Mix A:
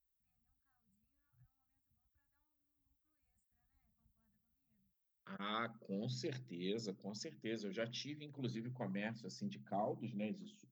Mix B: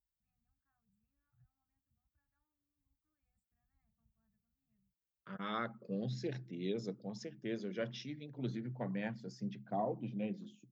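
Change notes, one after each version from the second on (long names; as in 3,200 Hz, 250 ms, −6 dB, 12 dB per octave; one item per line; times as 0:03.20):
second voice +4.0 dB
master: add high-shelf EQ 3,200 Hz −10.5 dB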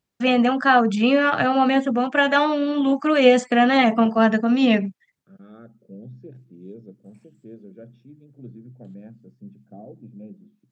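first voice: remove inverse Chebyshev band-stop filter 230–6,700 Hz, stop band 70 dB
second voice: add moving average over 44 samples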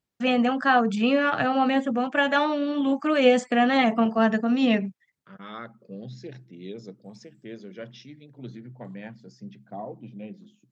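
first voice −4.0 dB
second voice: remove moving average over 44 samples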